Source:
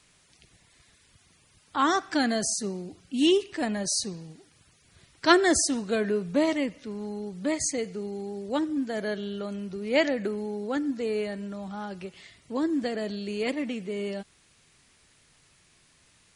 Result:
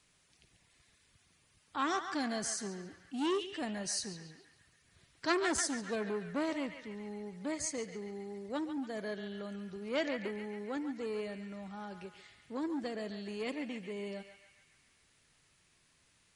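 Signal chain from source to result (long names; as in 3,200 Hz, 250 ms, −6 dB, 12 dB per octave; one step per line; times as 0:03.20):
feedback echo with a band-pass in the loop 140 ms, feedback 67%, band-pass 1,900 Hz, level −7 dB
saturating transformer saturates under 2,000 Hz
level −8.5 dB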